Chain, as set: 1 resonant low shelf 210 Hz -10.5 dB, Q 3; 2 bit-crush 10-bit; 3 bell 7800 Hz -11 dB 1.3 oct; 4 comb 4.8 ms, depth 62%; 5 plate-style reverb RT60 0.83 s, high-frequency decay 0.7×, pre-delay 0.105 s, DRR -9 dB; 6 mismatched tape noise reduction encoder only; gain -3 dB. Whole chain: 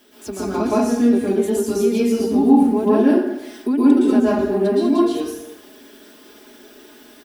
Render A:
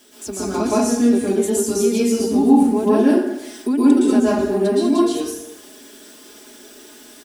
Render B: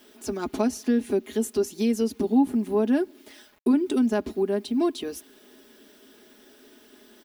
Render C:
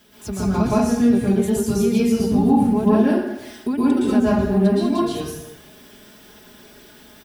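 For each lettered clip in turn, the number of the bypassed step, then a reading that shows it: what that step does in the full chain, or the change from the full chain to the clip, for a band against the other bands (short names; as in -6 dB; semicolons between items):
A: 3, 4 kHz band +3.5 dB; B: 5, momentary loudness spread change -2 LU; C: 1, loudness change -1.5 LU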